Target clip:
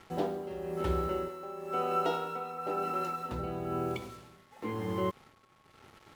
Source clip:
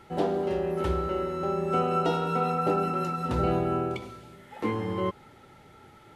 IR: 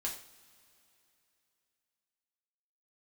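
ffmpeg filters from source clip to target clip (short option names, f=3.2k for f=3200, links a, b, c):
-filter_complex "[0:a]asettb=1/sr,asplit=3[a][b][c];[a]atrim=end=1.284[d];[b]atrim=start=1.28:end=3.32,asetpts=PTS-STARTPTS,afade=t=in:d=0.004:c=qsin,afade=t=out:st=2.036:d=0.004:c=qsin,bass=f=250:g=-13,treble=f=4k:g=-2[e];[c]atrim=start=3.316[f];[d][e]acrossfade=d=0.004:c1=hsin:c2=qsin[g];[g][f]acrossfade=d=0.004:c1=qsin:c2=hsin,acrusher=bits=7:mix=0:aa=0.5,tremolo=f=1:d=0.66,aeval=exprs='val(0)+0.000631*sin(2*PI*1100*n/s)':c=same,volume=-2.5dB"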